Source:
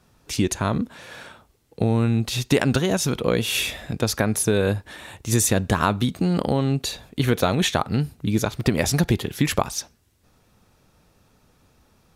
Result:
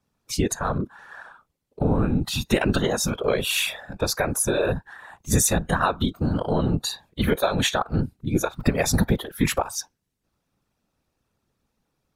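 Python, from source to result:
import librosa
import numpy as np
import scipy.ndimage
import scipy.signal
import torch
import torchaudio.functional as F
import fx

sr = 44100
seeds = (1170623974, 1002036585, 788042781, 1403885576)

p1 = 10.0 ** (-13.0 / 20.0) * np.tanh(x / 10.0 ** (-13.0 / 20.0))
p2 = x + (p1 * librosa.db_to_amplitude(-6.0))
p3 = fx.noise_reduce_blind(p2, sr, reduce_db=16)
p4 = fx.whisperise(p3, sr, seeds[0])
y = p4 * librosa.db_to_amplitude(-3.0)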